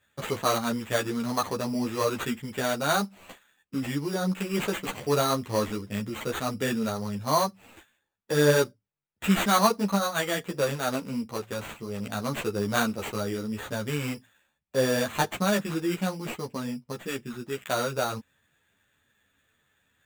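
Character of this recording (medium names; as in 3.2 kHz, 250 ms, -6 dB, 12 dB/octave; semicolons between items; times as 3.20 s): aliases and images of a low sample rate 5.2 kHz, jitter 0%; a shimmering, thickened sound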